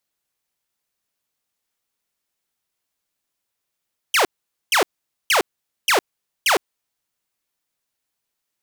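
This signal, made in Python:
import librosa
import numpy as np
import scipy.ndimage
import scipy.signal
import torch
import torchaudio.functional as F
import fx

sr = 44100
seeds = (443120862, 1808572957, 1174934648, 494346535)

y = fx.laser_zaps(sr, level_db=-11.0, start_hz=3300.0, end_hz=320.0, length_s=0.11, wave='saw', shots=5, gap_s=0.47)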